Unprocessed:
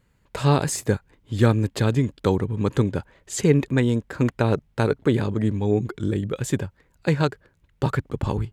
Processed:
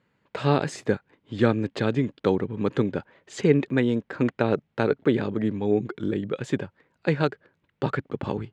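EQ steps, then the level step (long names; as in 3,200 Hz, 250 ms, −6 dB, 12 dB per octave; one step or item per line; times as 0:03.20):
dynamic equaliser 1,000 Hz, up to −5 dB, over −44 dBFS, Q 3.7
band-pass filter 180–3,600 Hz
0.0 dB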